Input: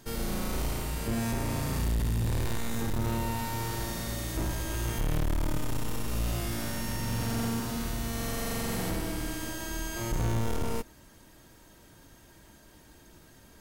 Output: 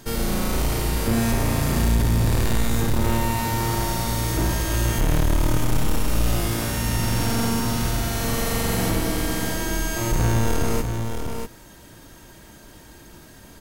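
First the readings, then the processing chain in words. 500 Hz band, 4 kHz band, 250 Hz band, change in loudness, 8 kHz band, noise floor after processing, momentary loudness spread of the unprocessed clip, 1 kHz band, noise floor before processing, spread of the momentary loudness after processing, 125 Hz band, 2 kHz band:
+9.5 dB, +9.5 dB, +9.0 dB, +9.0 dB, +9.5 dB, −46 dBFS, 4 LU, +9.5 dB, −56 dBFS, 4 LU, +9.5 dB, +9.5 dB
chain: single-tap delay 642 ms −6.5 dB
level +8.5 dB

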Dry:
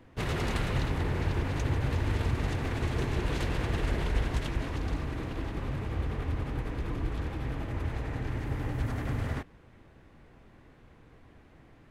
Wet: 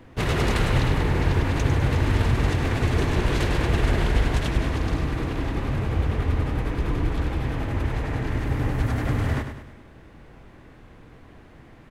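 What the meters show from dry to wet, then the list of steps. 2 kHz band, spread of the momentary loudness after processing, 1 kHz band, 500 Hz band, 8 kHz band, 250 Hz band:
+8.5 dB, 5 LU, +8.0 dB, +8.0 dB, +8.0 dB, +8.0 dB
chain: repeating echo 101 ms, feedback 48%, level −8.5 dB
level +7.5 dB

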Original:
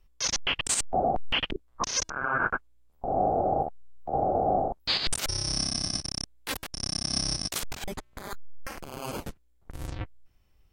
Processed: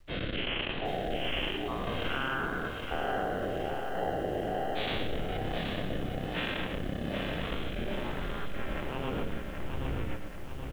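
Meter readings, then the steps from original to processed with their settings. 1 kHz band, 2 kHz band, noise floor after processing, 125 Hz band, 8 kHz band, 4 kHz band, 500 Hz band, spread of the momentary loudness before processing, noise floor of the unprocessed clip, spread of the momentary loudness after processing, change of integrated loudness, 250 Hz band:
−6.5 dB, −1.5 dB, −38 dBFS, +1.5 dB, −28.0 dB, −7.0 dB, −2.0 dB, 16 LU, −63 dBFS, 6 LU, −5.5 dB, +2.0 dB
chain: every bin's largest magnitude spread in time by 240 ms
parametric band 84 Hz −3.5 dB 2.6 octaves
in parallel at −7 dB: decimation without filtering 37×
on the sum: Butterworth low-pass 3,500 Hz 72 dB per octave
on a send: single-tap delay 898 ms −20.5 dB
on the sum: bit reduction 11 bits
rotating-speaker cabinet horn 1.2 Hz, later 7.5 Hz, at 0:07.96
slap from a distant wall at 19 metres, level −10 dB
downward compressor 5 to 1, threshold −31 dBFS, peak gain reduction 14.5 dB
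feedback echo at a low word length 776 ms, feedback 55%, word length 9 bits, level −5.5 dB

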